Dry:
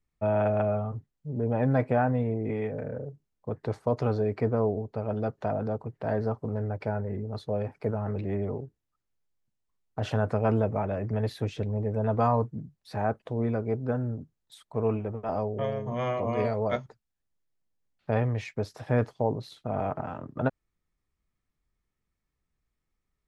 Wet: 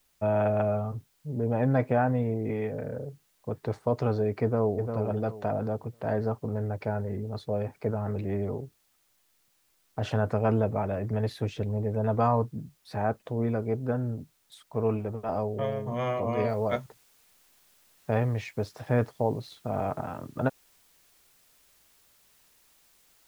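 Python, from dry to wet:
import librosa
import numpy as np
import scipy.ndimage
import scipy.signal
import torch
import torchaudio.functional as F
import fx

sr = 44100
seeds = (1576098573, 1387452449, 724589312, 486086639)

y = fx.echo_throw(x, sr, start_s=4.43, length_s=0.53, ms=350, feedback_pct=30, wet_db=-6.5)
y = fx.noise_floor_step(y, sr, seeds[0], at_s=16.49, before_db=-70, after_db=-63, tilt_db=0.0)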